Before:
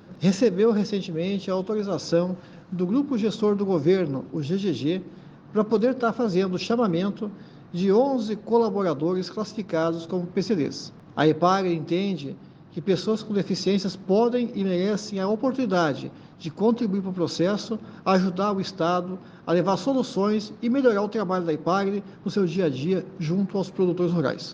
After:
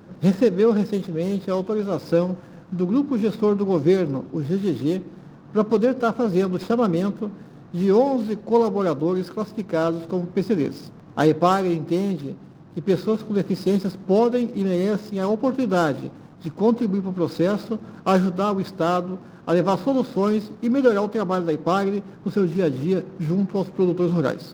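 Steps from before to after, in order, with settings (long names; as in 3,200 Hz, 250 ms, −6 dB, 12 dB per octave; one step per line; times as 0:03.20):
running median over 15 samples
level +2.5 dB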